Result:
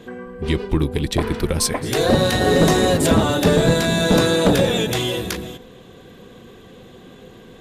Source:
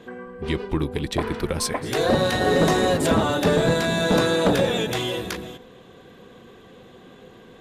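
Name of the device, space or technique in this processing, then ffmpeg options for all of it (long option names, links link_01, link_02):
smiley-face EQ: -af "lowshelf=frequency=89:gain=5,equalizer=frequency=1100:width_type=o:width=2.2:gain=-3.5,highshelf=frequency=7000:gain=4,volume=4.5dB"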